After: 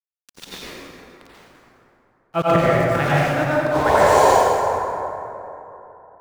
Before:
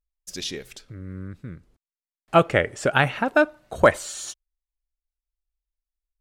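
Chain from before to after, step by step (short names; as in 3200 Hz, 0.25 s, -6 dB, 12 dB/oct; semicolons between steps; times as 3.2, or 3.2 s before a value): bell 450 Hz -4.5 dB 0.43 oct; painted sound noise, 3.66–4.25, 370–1100 Hz -23 dBFS; sample gate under -27.5 dBFS; auto swell 0.112 s; high shelf 6600 Hz -8 dB; plate-style reverb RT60 3.2 s, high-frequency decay 0.45×, pre-delay 75 ms, DRR -9 dB; gain +1 dB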